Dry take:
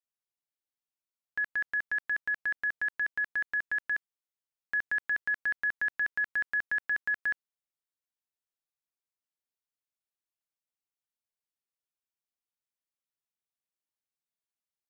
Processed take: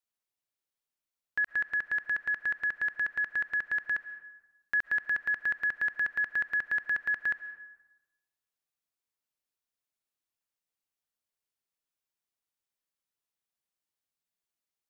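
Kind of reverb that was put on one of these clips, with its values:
comb and all-pass reverb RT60 1.1 s, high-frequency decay 0.55×, pre-delay 95 ms, DRR 13.5 dB
level +2 dB

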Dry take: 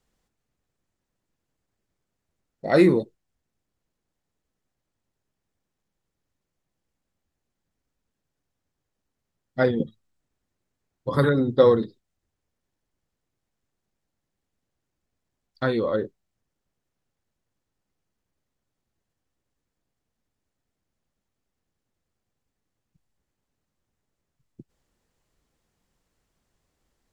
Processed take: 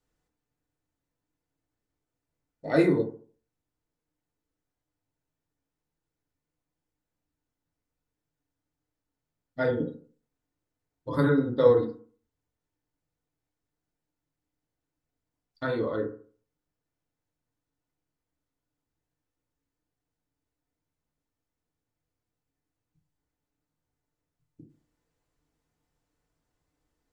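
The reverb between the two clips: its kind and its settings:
feedback delay network reverb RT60 0.44 s, low-frequency decay 1×, high-frequency decay 0.35×, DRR −1 dB
level −8.5 dB

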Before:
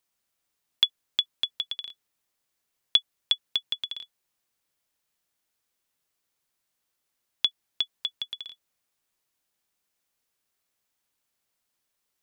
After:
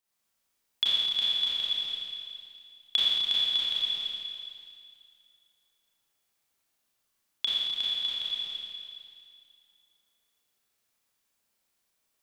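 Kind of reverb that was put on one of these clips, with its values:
four-comb reverb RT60 2.3 s, combs from 28 ms, DRR −8.5 dB
level −6.5 dB

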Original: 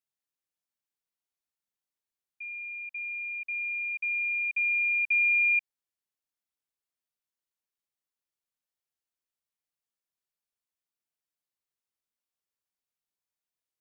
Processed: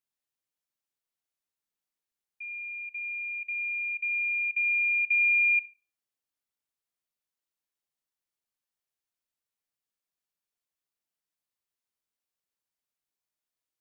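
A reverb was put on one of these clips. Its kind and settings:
comb and all-pass reverb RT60 0.46 s, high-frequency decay 0.45×, pre-delay 20 ms, DRR 15.5 dB

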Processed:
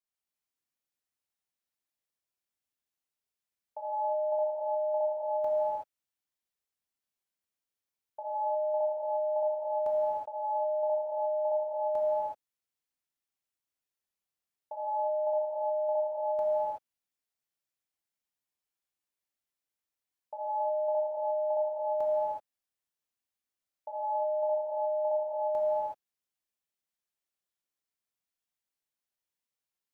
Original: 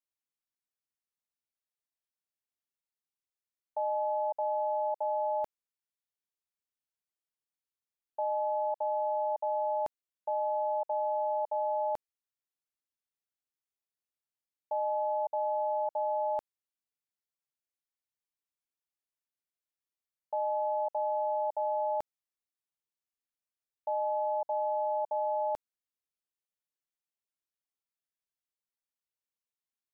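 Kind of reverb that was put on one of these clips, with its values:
reverb whose tail is shaped and stops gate 400 ms flat, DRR −6 dB
level −4.5 dB

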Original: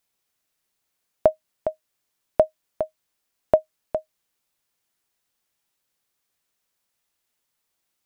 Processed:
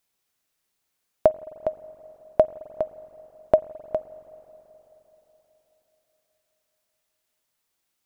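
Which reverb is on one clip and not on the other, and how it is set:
spring reverb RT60 4 s, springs 43/53 ms, chirp 75 ms, DRR 17 dB

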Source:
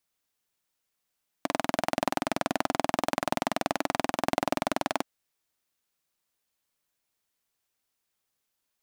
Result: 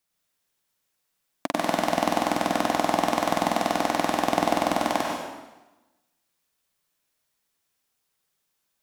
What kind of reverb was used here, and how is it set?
dense smooth reverb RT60 1.1 s, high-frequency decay 0.9×, pre-delay 85 ms, DRR −1 dB
level +1 dB

